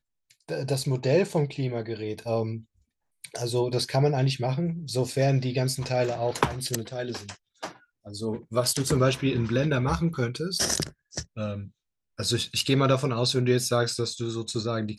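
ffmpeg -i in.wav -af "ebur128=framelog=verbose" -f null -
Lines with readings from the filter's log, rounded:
Integrated loudness:
  I:         -26.7 LUFS
  Threshold: -37.3 LUFS
Loudness range:
  LRA:         3.0 LU
  Threshold: -47.4 LUFS
  LRA low:   -29.1 LUFS
  LRA high:  -26.1 LUFS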